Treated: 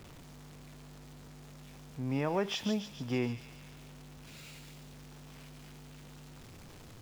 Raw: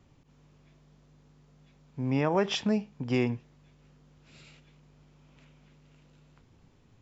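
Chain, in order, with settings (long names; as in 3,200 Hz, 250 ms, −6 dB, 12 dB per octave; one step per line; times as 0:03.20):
converter with a step at zero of −41 dBFS
on a send: delay with a high-pass on its return 143 ms, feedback 60%, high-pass 3,500 Hz, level −4 dB
on the sum: level −6 dB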